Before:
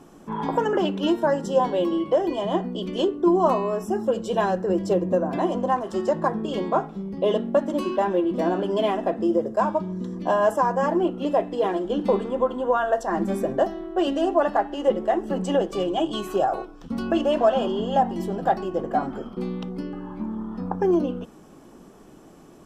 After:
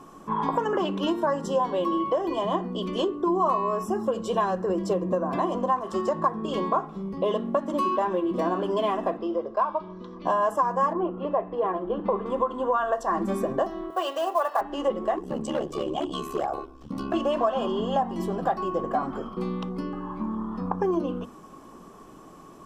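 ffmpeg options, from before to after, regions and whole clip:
-filter_complex "[0:a]asettb=1/sr,asplit=3[s0][s1][s2];[s0]atrim=end=9.174[s3];[s1]atrim=start=9.17:end=10.25,asetpts=PTS-STARTPTS,afade=t=in:d=0.004:c=qsin,afade=t=out:st=1.076:d=0.004:c=qsin,lowpass=f=4600:w=0.5412,lowpass=f=4600:w=1.3066,equalizer=f=160:t=o:w=2:g=-13,bandreject=f=1800:w=8.6[s4];[s2]atrim=start=10.246[s5];[s3][s4]acrossfade=d=0.004:c1=hsin:c2=qsin[s6];[s6][s5]acrossfade=d=0.004:c1=qsin:c2=hsin,asettb=1/sr,asplit=3[s7][s8][s9];[s7]atrim=end=10.934[s10];[s8]atrim=start=10.93:end=12.26,asetpts=PTS-STARTPTS,afade=t=in:d=0.004:c=qsin,afade=t=out:st=1.326:d=0.004:c=qsin,lowpass=1700,equalizer=f=270:t=o:w=0.36:g=-10.5[s11];[s9]atrim=start=12.256[s12];[s10][s11]acrossfade=d=0.004:c1=hsin:c2=qsin[s13];[s13][s12]acrossfade=d=0.004:c1=qsin:c2=hsin,asettb=1/sr,asplit=3[s14][s15][s16];[s14]atrim=end=13.904[s17];[s15]atrim=start=13.9:end=14.61,asetpts=PTS-STARTPTS,afade=t=in:d=0.004:c=qsin,afade=t=out:st=0.706:d=0.004:c=qsin,highpass=f=480:w=0.5412,highpass=f=480:w=1.3066,acrusher=bits=6:mode=log:mix=0:aa=0.000001[s18];[s16]atrim=start=14.606[s19];[s17][s18]acrossfade=d=0.004:c1=hsin:c2=qsin[s20];[s20][s19]acrossfade=d=0.004:c1=qsin:c2=hsin,asettb=1/sr,asplit=3[s21][s22][s23];[s21]atrim=end=15.164[s24];[s22]atrim=start=15.16:end=17.14,asetpts=PTS-STARTPTS,afade=t=in:d=0.004:c=qsin,afade=t=out:st=1.976:d=0.004:c=qsin,equalizer=f=1300:t=o:w=1.4:g=-6.5,asoftclip=type=hard:threshold=0.119,aeval=exprs='val(0)*sin(2*PI*35*n/s)':c=same[s25];[s23]atrim=start=17.136[s26];[s24][s25]acrossfade=d=0.004:c1=hsin:c2=qsin[s27];[s27][s26]acrossfade=d=0.004:c1=qsin:c2=hsin,equalizer=f=1100:t=o:w=0.21:g=14.5,bandreject=f=50:t=h:w=6,bandreject=f=100:t=h:w=6,bandreject=f=150:t=h:w=6,bandreject=f=200:t=h:w=6,bandreject=f=250:t=h:w=6,bandreject=f=300:t=h:w=6,bandreject=f=350:t=h:w=6,acompressor=threshold=0.0708:ratio=2.5"

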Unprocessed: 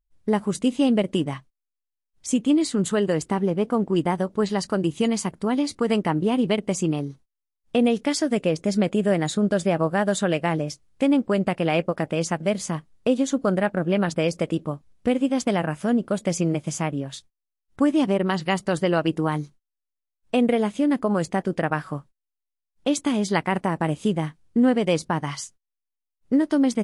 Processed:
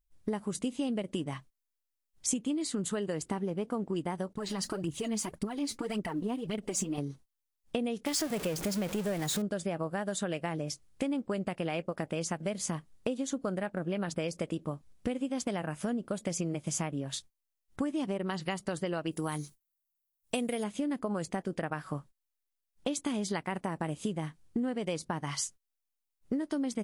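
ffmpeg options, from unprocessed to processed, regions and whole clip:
-filter_complex "[0:a]asettb=1/sr,asplit=3[s0][s1][s2];[s0]atrim=end=4.334[s3];[s1]atrim=start=4.33:end=6.98,asetpts=PTS-STARTPTS,afade=t=in:d=0.004:c=qsin,afade=t=out:st=2.646:d=0.004:c=qsin,agate=range=0.0224:threshold=0.00501:ratio=3:release=100:detection=peak,acompressor=threshold=0.0398:ratio=5:attack=3.2:release=140:knee=1:detection=peak,aphaser=in_gain=1:out_gain=1:delay=4.9:decay=0.61:speed=1.8:type=triangular[s4];[s2]atrim=start=6.976[s5];[s3][s4]acrossfade=d=0.004:c1=hsin:c2=qsin[s6];[s6][s5]acrossfade=d=0.004:c1=qsin:c2=hsin,asettb=1/sr,asplit=3[s7][s8][s9];[s7]atrim=end=8.064[s10];[s8]atrim=start=8.06:end=9.42,asetpts=PTS-STARTPTS,afade=t=in:d=0.004:c=qsin,afade=t=out:st=1.356:d=0.004:c=qsin,aeval=exprs='val(0)+0.5*0.0562*sgn(val(0))':c=same,equalizer=f=250:w=4.8:g=-5.5[s11];[s9]atrim=start=9.416[s12];[s10][s11]acrossfade=d=0.004:c1=hsin:c2=qsin[s13];[s13][s12]acrossfade=d=0.004:c1=qsin:c2=hsin,asettb=1/sr,asplit=3[s14][s15][s16];[s14]atrim=end=19.114[s17];[s15]atrim=start=19.11:end=20.64,asetpts=PTS-STARTPTS,afade=t=in:d=0.004:c=qsin,afade=t=out:st=1.526:d=0.004:c=qsin,agate=range=0.282:threshold=0.00126:ratio=16:release=100:detection=peak,aemphasis=mode=production:type=75fm[s18];[s16]atrim=start=20.636[s19];[s17][s18]acrossfade=d=0.004:c1=hsin:c2=qsin[s20];[s20][s19]acrossfade=d=0.004:c1=qsin:c2=hsin,acompressor=threshold=0.0355:ratio=6,highshelf=f=6100:g=6.5,volume=0.841"

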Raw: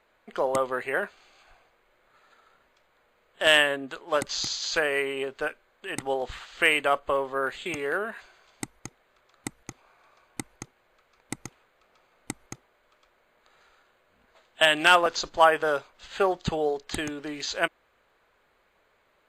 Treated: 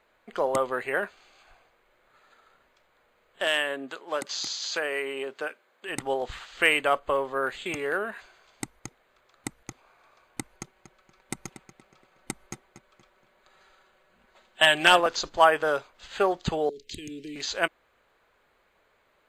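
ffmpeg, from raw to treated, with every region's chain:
-filter_complex "[0:a]asettb=1/sr,asplit=3[s0][s1][s2];[s0]atrim=end=3.444[s3];[s1]atrim=start=3.44:end=5.89,asetpts=PTS-STARTPTS,afade=t=in:d=0.004:c=qsin,afade=t=out:st=2.446:d=0.004:c=qsin,acompressor=threshold=0.0282:ratio=1.5:attack=3.2:release=140:knee=1:detection=peak,highpass=210[s4];[s2]atrim=start=5.886[s5];[s3][s4]acrossfade=d=0.004:c1=hsin:c2=qsin[s6];[s6][s5]acrossfade=d=0.004:c1=qsin:c2=hsin,asettb=1/sr,asplit=3[s7][s8][s9];[s7]atrim=end=10.524[s10];[s8]atrim=start=10.52:end=15,asetpts=PTS-STARTPTS,afade=t=in:d=0.004:c=qsin,afade=t=out:st=4.476:d=0.004:c=qsin,aecho=1:1:5.3:0.49,atrim=end_sample=197568,asplit=2[s11][s12];[s12]adelay=236,lowpass=f=5000:p=1,volume=0.266,asplit=2[s13][s14];[s14]adelay=236,lowpass=f=5000:p=1,volume=0.35,asplit=2[s15][s16];[s16]adelay=236,lowpass=f=5000:p=1,volume=0.35,asplit=2[s17][s18];[s18]adelay=236,lowpass=f=5000:p=1,volume=0.35[s19];[s11][s13][s15][s17][s19]amix=inputs=5:normalize=0,atrim=end_sample=197568[s20];[s9]atrim=start=14.996[s21];[s10][s20]acrossfade=d=0.004:c1=hsin:c2=qsin[s22];[s22][s21]acrossfade=d=0.004:c1=qsin:c2=hsin,asettb=1/sr,asplit=3[s23][s24][s25];[s23]atrim=end=16.694[s26];[s24]atrim=start=16.69:end=17.36,asetpts=PTS-STARTPTS,afade=t=in:d=0.004:c=qsin,afade=t=out:st=0.666:d=0.004:c=qsin,acompressor=threshold=0.0224:ratio=10:attack=3.2:release=140:knee=1:detection=peak,asuperstop=centerf=1000:order=8:qfactor=0.55[s27];[s25]atrim=start=17.356[s28];[s26][s27]acrossfade=d=0.004:c1=hsin:c2=qsin[s29];[s29][s28]acrossfade=d=0.004:c1=qsin:c2=hsin"

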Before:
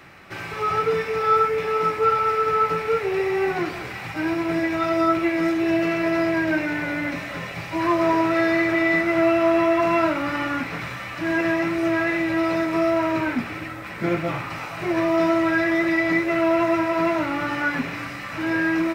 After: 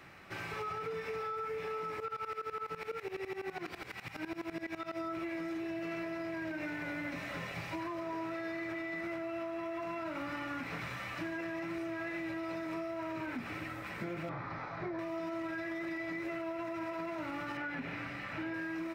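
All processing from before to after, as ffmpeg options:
-filter_complex "[0:a]asettb=1/sr,asplit=3[s0][s1][s2];[s0]atrim=end=2.004[s3];[s1]atrim=start=2:end=4.99,asetpts=PTS-STARTPTS,afade=t=in:d=0.004:c=qsin,afade=t=out:st=2.986:d=0.004:c=qsin,acrossover=split=4100[s4][s5];[s5]acompressor=threshold=0.00224:ratio=4:attack=1:release=60[s6];[s4][s6]amix=inputs=2:normalize=0,highshelf=f=3500:g=10.5,aeval=exprs='val(0)*pow(10,-19*if(lt(mod(-12*n/s,1),2*abs(-12)/1000),1-mod(-12*n/s,1)/(2*abs(-12)/1000),(mod(-12*n/s,1)-2*abs(-12)/1000)/(1-2*abs(-12)/1000))/20)':c=same[s7];[s2]atrim=start=4.986[s8];[s3][s7]acrossfade=d=0.004:c1=hsin:c2=qsin[s9];[s9][s8]acrossfade=d=0.004:c1=qsin:c2=hsin,asettb=1/sr,asplit=3[s10][s11][s12];[s10]atrim=end=14.294[s13];[s11]atrim=start=14.29:end=14.99,asetpts=PTS-STARTPTS,afade=t=in:d=0.004:c=qsin,afade=t=out:st=0.696:d=0.004:c=qsin,lowpass=f=5200:w=0.5412,lowpass=f=5200:w=1.3066,acrossover=split=3700[s14][s15];[s15]acompressor=threshold=0.00126:ratio=4:attack=1:release=60[s16];[s14][s16]amix=inputs=2:normalize=0,equalizer=f=2800:w=3.1:g=-14.5[s17];[s12]atrim=start=14.986[s18];[s13][s17]acrossfade=d=0.004:c1=hsin:c2=qsin[s19];[s19][s18]acrossfade=d=0.004:c1=qsin:c2=hsin,asettb=1/sr,asplit=3[s20][s21][s22];[s20]atrim=end=17.574[s23];[s21]atrim=start=17.57:end=18.54,asetpts=PTS-STARTPTS,afade=t=in:d=0.004:c=qsin,afade=t=out:st=0.966:d=0.004:c=qsin,acrossover=split=3900[s24][s25];[s25]acompressor=threshold=0.00112:ratio=4:attack=1:release=60[s26];[s24][s26]amix=inputs=2:normalize=0,bandreject=f=1100:w=7[s27];[s22]atrim=start=18.536[s28];[s23][s27]acrossfade=d=0.004:c1=hsin:c2=qsin[s29];[s29][s28]acrossfade=d=0.004:c1=qsin:c2=hsin,alimiter=limit=0.119:level=0:latency=1:release=52,acompressor=threshold=0.0398:ratio=6,volume=0.398"

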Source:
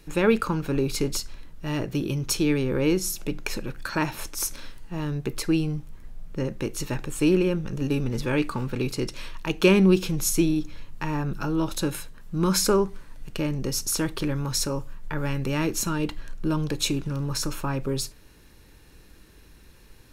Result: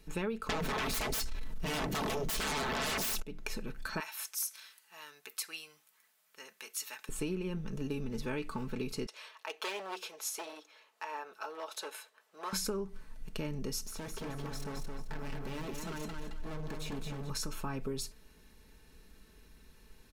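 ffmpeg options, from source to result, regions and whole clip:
-filter_complex "[0:a]asettb=1/sr,asplit=3[s0][s1][s2];[s0]atrim=end=0.494[s3];[s1]atrim=start=0.49:end=3.22,asetpts=PTS-STARTPTS,afade=t=in:d=0.004:c=qsin,afade=t=out:st=2.726:d=0.004:c=qsin,bandreject=f=50:t=h:w=6,bandreject=f=100:t=h:w=6,bandreject=f=150:t=h:w=6,bandreject=f=200:t=h:w=6,bandreject=f=250:t=h:w=6,bandreject=f=300:t=h:w=6,bandreject=f=350:t=h:w=6,aeval=exprs='0.251*sin(PI/2*10*val(0)/0.251)':c=same[s4];[s2]atrim=start=3.216[s5];[s3][s4]acrossfade=d=0.004:c1=hsin:c2=qsin[s6];[s6][s5]acrossfade=d=0.004:c1=qsin:c2=hsin,asettb=1/sr,asplit=3[s7][s8][s9];[s7]atrim=end=4.004[s10];[s8]atrim=start=4:end=7.09,asetpts=PTS-STARTPTS,afade=t=in:d=0.004:c=qsin,afade=t=out:st=3.086:d=0.004:c=qsin,highpass=1300,highshelf=f=10000:g=11.5[s11];[s9]atrim=start=7.086[s12];[s10][s11]acrossfade=d=0.004:c1=hsin:c2=qsin[s13];[s13][s12]acrossfade=d=0.004:c1=qsin:c2=hsin,asettb=1/sr,asplit=3[s14][s15][s16];[s14]atrim=end=9.064[s17];[s15]atrim=start=9.06:end=12.53,asetpts=PTS-STARTPTS,afade=t=in:d=0.004:c=qsin,afade=t=out:st=3.466:d=0.004:c=qsin,highshelf=f=5600:g=-6.5,asoftclip=type=hard:threshold=0.106,highpass=f=520:w=0.5412,highpass=f=520:w=1.3066[s18];[s16]atrim=start=12.526[s19];[s17][s18]acrossfade=d=0.004:c1=hsin:c2=qsin[s20];[s20][s19]acrossfade=d=0.004:c1=qsin:c2=hsin,asettb=1/sr,asplit=3[s21][s22][s23];[s21]atrim=end=13.844[s24];[s22]atrim=start=13.84:end=17.3,asetpts=PTS-STARTPTS,afade=t=in:d=0.004:c=qsin,afade=t=out:st=3.456:d=0.004:c=qsin,acrossover=split=2600[s25][s26];[s26]acompressor=threshold=0.0141:ratio=4:attack=1:release=60[s27];[s25][s27]amix=inputs=2:normalize=0,asoftclip=type=hard:threshold=0.0266,aecho=1:1:218|436|654|872:0.631|0.183|0.0531|0.0154,atrim=end_sample=152586[s28];[s23]atrim=start=17.296[s29];[s24][s28]acrossfade=d=0.004:c1=hsin:c2=qsin[s30];[s30][s29]acrossfade=d=0.004:c1=qsin:c2=hsin,aecho=1:1:4.6:0.5,acompressor=threshold=0.0631:ratio=10,volume=0.398"

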